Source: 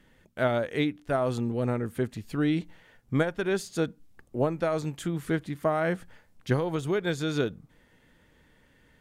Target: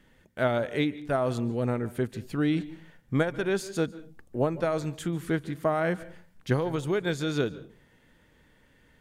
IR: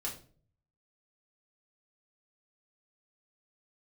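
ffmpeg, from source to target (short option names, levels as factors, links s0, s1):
-filter_complex "[0:a]asplit=2[s0][s1];[1:a]atrim=start_sample=2205,asetrate=57330,aresample=44100,adelay=142[s2];[s1][s2]afir=irnorm=-1:irlink=0,volume=0.141[s3];[s0][s3]amix=inputs=2:normalize=0"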